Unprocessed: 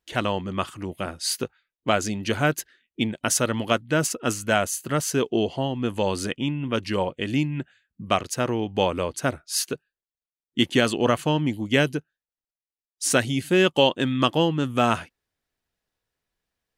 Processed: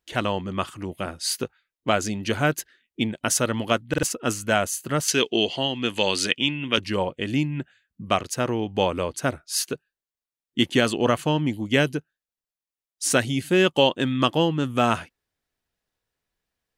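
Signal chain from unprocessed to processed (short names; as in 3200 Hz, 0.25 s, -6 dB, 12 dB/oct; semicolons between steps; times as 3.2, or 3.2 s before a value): 5.08–6.78 weighting filter D; stuck buffer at 3.89, samples 2048, times 2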